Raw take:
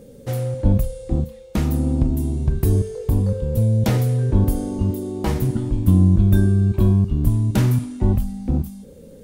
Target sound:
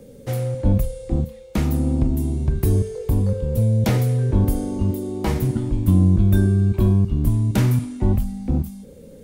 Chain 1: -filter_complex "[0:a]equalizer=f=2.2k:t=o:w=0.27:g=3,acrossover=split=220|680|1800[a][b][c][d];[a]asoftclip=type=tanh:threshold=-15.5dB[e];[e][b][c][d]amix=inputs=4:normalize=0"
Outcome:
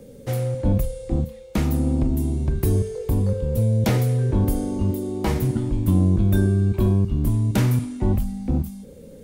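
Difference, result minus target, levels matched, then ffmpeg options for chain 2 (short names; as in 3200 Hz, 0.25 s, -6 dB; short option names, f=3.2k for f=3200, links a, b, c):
soft clip: distortion +10 dB
-filter_complex "[0:a]equalizer=f=2.2k:t=o:w=0.27:g=3,acrossover=split=220|680|1800[a][b][c][d];[a]asoftclip=type=tanh:threshold=-8dB[e];[e][b][c][d]amix=inputs=4:normalize=0"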